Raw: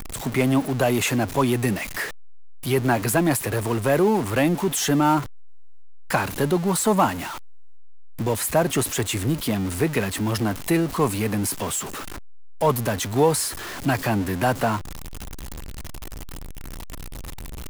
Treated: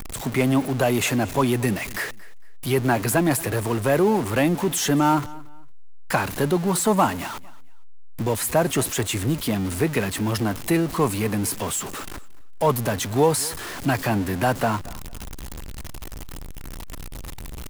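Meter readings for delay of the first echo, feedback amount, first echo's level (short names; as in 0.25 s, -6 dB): 0.228 s, 28%, -21.0 dB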